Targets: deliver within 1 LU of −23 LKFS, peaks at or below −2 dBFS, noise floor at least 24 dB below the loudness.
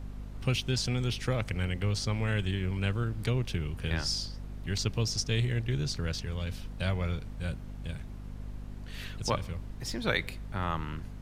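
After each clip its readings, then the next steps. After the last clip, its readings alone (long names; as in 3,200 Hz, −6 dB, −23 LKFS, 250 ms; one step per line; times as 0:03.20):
mains hum 50 Hz; hum harmonics up to 250 Hz; level of the hum −40 dBFS; background noise floor −42 dBFS; target noise floor −57 dBFS; integrated loudness −32.5 LKFS; sample peak −12.5 dBFS; target loudness −23.0 LKFS
→ mains-hum notches 50/100/150/200/250 Hz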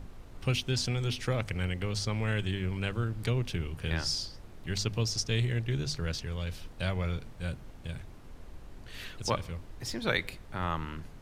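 mains hum none found; background noise floor −49 dBFS; target noise floor −57 dBFS
→ noise reduction from a noise print 8 dB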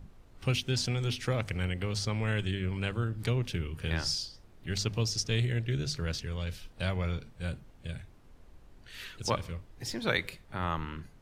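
background noise floor −57 dBFS; integrated loudness −33.0 LKFS; sample peak −12.5 dBFS; target loudness −23.0 LKFS
→ level +10 dB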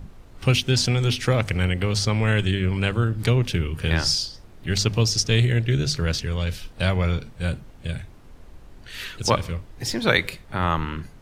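integrated loudness −23.0 LKFS; sample peak −2.5 dBFS; background noise floor −47 dBFS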